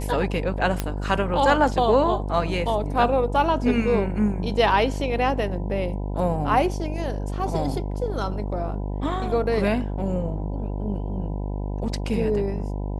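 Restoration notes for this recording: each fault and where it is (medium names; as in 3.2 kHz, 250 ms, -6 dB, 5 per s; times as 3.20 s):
buzz 50 Hz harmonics 20 -28 dBFS
0.80 s: pop -9 dBFS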